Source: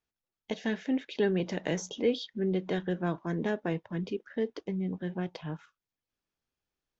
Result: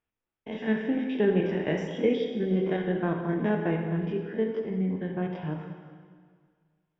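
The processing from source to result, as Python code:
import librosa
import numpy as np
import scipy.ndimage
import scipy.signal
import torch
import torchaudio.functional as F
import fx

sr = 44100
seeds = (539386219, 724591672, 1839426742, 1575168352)

y = fx.spec_steps(x, sr, hold_ms=50)
y = scipy.signal.savgol_filter(y, 25, 4, mode='constant')
y = fx.rev_plate(y, sr, seeds[0], rt60_s=1.9, hf_ratio=0.9, predelay_ms=0, drr_db=2.5)
y = F.gain(torch.from_numpy(y), 3.5).numpy()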